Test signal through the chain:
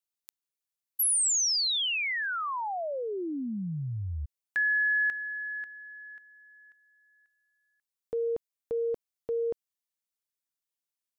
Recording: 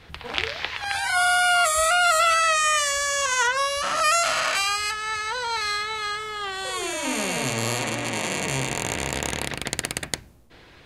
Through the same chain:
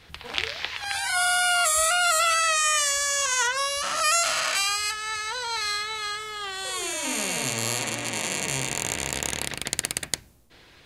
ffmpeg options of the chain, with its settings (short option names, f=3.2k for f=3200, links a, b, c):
-af "highshelf=f=3.1k:g=8.5,volume=-5dB"